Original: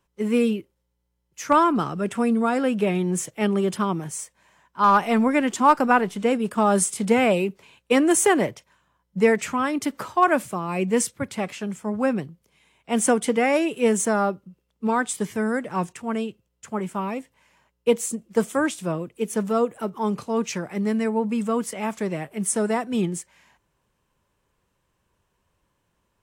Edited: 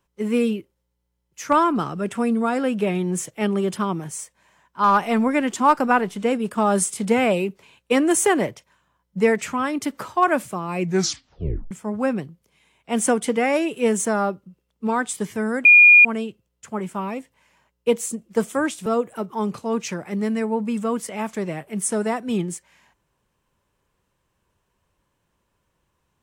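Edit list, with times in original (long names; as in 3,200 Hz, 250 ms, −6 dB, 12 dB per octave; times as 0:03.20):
0:10.79: tape stop 0.92 s
0:15.65–0:16.05: beep over 2,430 Hz −6.5 dBFS
0:18.86–0:19.50: remove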